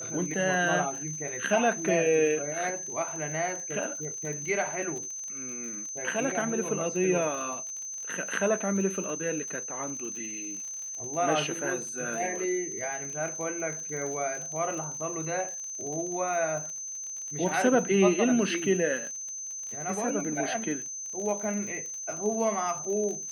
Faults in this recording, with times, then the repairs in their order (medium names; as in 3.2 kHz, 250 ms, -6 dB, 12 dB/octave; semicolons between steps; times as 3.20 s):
crackle 46 per s -36 dBFS
whine 6.2 kHz -35 dBFS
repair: de-click; band-stop 6.2 kHz, Q 30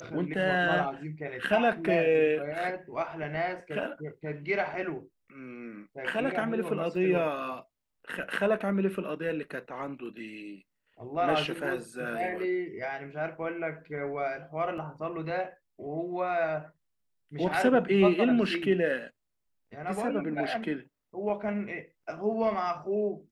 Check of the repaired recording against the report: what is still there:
nothing left